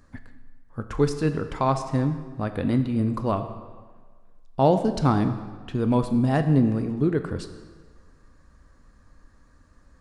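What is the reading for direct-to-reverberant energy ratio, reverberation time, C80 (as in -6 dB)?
8.0 dB, 1.5 s, 11.0 dB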